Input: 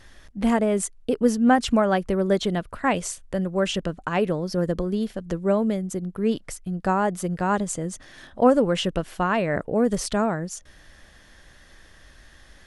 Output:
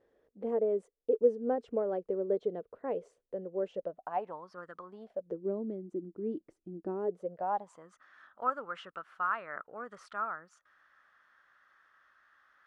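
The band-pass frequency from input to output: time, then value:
band-pass, Q 6.4
3.65 s 460 Hz
4.72 s 1400 Hz
5.47 s 330 Hz
6.93 s 330 Hz
7.93 s 1300 Hz

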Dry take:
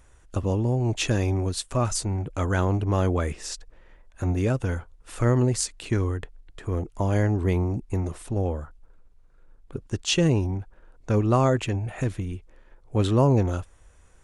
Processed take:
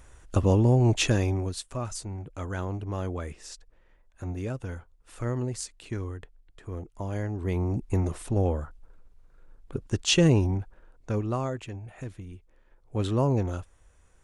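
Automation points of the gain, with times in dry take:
0.86 s +3.5 dB
1.82 s -9 dB
7.33 s -9 dB
7.82 s +1 dB
10.59 s +1 dB
11.57 s -11.5 dB
12.17 s -11.5 dB
13.08 s -5 dB

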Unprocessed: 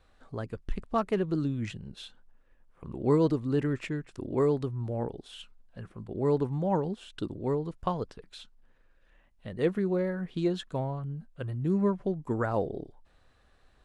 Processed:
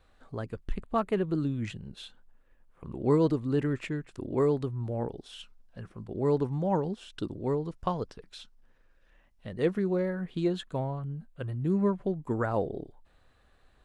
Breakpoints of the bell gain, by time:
bell 5500 Hz 0.32 oct
-3 dB
from 0.75 s -13 dB
from 1.47 s -3 dB
from 5.06 s +4 dB
from 10.06 s -6 dB

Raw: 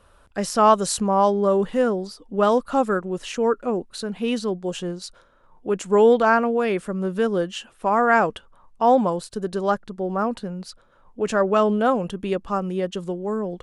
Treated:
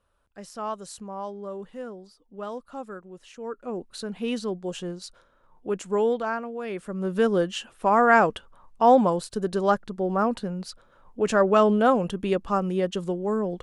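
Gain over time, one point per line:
3.38 s -16.5 dB
3.88 s -4.5 dB
5.72 s -4.5 dB
6.51 s -13.5 dB
7.2 s 0 dB

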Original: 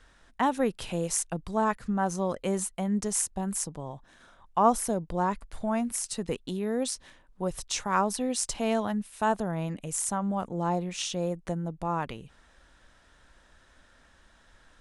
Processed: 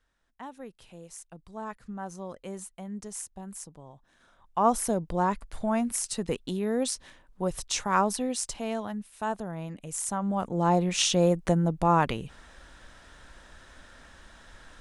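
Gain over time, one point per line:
1.14 s -16.5 dB
1.82 s -10 dB
3.94 s -10 dB
4.87 s +1.5 dB
8.08 s +1.5 dB
8.68 s -5 dB
9.74 s -5 dB
11 s +8 dB

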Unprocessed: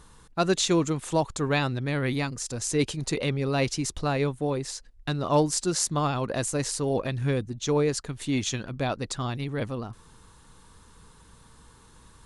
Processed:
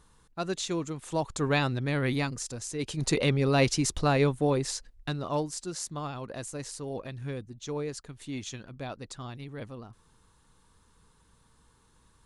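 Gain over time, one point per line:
0.97 s -8.5 dB
1.43 s -1 dB
2.34 s -1 dB
2.78 s -10 dB
3.02 s +2 dB
4.76 s +2 dB
5.5 s -10 dB

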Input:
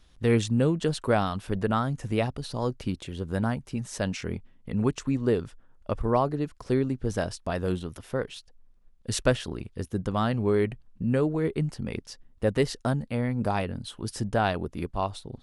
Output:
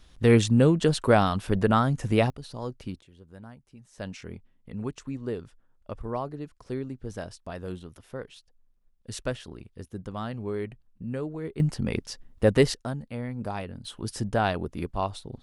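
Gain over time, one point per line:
+4 dB
from 2.3 s -6 dB
from 3.01 s -18.5 dB
from 3.98 s -8 dB
from 11.6 s +4.5 dB
from 12.74 s -6 dB
from 13.85 s 0 dB

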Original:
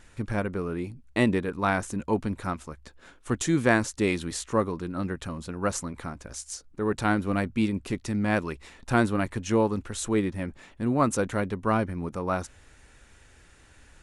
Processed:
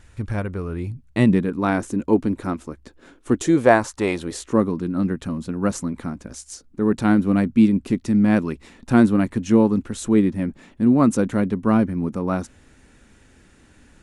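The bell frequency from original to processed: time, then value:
bell +12 dB 1.4 oct
0.67 s 69 Hz
1.68 s 300 Hz
3.34 s 300 Hz
3.93 s 1100 Hz
4.62 s 230 Hz

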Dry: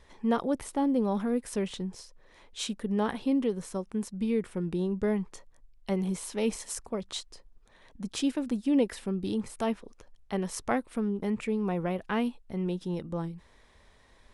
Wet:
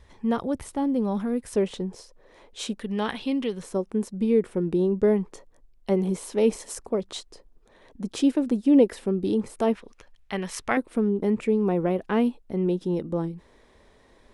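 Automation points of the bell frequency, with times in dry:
bell +9.5 dB 1.9 oct
82 Hz
from 1.56 s 470 Hz
from 2.79 s 3100 Hz
from 3.63 s 400 Hz
from 9.75 s 2300 Hz
from 10.77 s 360 Hz

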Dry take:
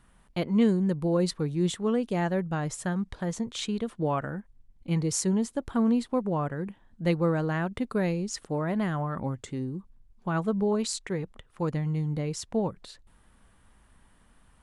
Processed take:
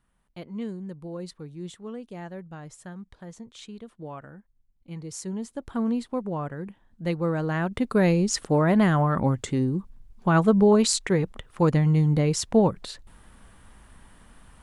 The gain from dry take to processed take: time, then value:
4.96 s -11 dB
5.75 s -2 dB
7.14 s -2 dB
8.21 s +8.5 dB

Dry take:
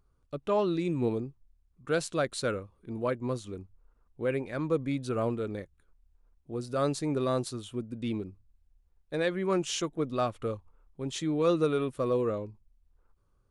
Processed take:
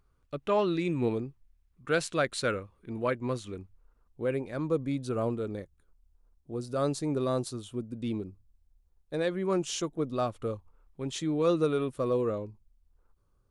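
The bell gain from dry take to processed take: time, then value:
bell 2100 Hz 1.5 oct
3.59 s +5.5 dB
4.38 s -4.5 dB
10.46 s -4.5 dB
11.01 s +4.5 dB
11.2 s -2 dB

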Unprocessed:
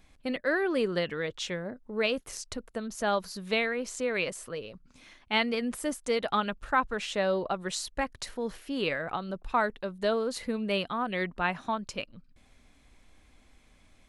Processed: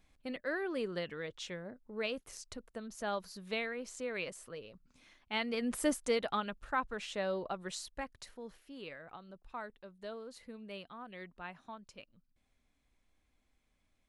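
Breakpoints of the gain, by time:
5.4 s -9 dB
5.86 s +1 dB
6.42 s -8 dB
7.69 s -8 dB
8.82 s -17 dB

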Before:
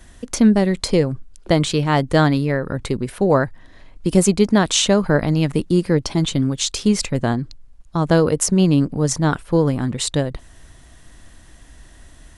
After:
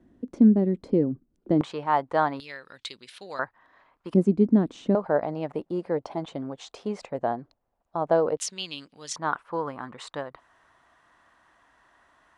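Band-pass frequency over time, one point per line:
band-pass, Q 2.2
280 Hz
from 1.61 s 910 Hz
from 2.4 s 3700 Hz
from 3.39 s 1100 Hz
from 4.14 s 270 Hz
from 4.95 s 710 Hz
from 8.37 s 3400 Hz
from 9.16 s 1100 Hz

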